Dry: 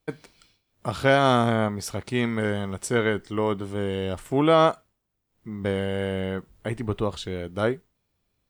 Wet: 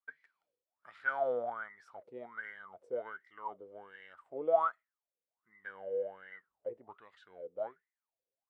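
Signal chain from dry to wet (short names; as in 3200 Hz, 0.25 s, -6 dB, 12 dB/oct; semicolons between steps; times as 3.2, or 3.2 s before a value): wah 1.3 Hz 480–2000 Hz, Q 17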